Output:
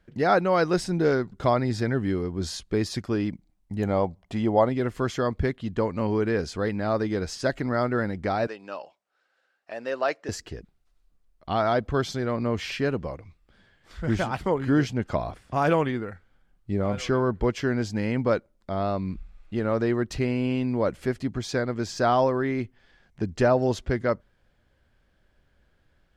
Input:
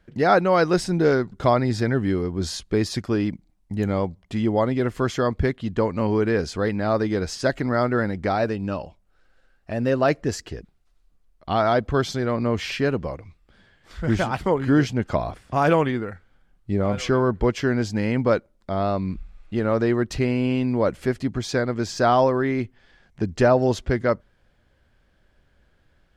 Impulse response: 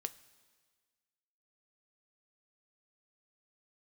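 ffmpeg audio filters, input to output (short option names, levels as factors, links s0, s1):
-filter_complex "[0:a]asettb=1/sr,asplit=3[s0][s1][s2];[s0]atrim=end=3.824[s3];[s1]atrim=start=3.82:end=4.69,asetpts=PTS-STARTPTS,afade=t=in:d=0.004:c=qsin,afade=t=out:st=0.866:d=0.004:c=qsin,equalizer=f=730:w=1.3:g=7.5[s4];[s2]atrim=start=4.686[s5];[s3][s4]acrossfade=d=0.004:c1=hsin:c2=qsin[s6];[s6][s5]acrossfade=d=0.004:c1=qsin:c2=hsin,asettb=1/sr,asplit=3[s7][s8][s9];[s7]atrim=end=8.474[s10];[s8]atrim=start=8.47:end=10.29,asetpts=PTS-STARTPTS,afade=t=in:d=0.004:c=qsin,afade=t=out:st=1.816:d=0.004:c=qsin,highpass=550,lowpass=7900[s11];[s9]atrim=start=10.286[s12];[s10][s11]acrossfade=d=0.004:c1=hsin:c2=qsin[s13];[s13][s12]acrossfade=d=0.004:c1=qsin:c2=hsin,volume=0.668"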